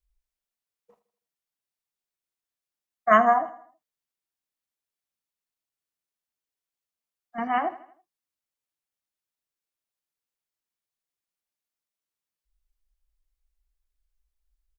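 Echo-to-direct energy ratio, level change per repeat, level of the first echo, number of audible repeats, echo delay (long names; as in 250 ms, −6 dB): −15.0 dB, −7.0 dB, −16.0 dB, 3, 81 ms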